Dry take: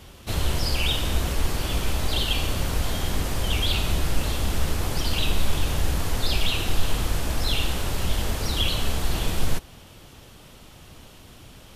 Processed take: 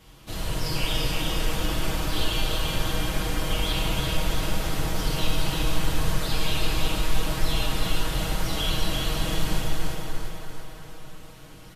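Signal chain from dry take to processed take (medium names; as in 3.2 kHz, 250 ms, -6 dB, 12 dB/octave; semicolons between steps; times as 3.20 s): comb 6.3 ms, depth 70%; on a send: thinning echo 342 ms, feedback 51%, high-pass 470 Hz, level -3 dB; on the sum: plate-style reverb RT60 3.9 s, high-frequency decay 0.35×, DRR -5 dB; trim -9 dB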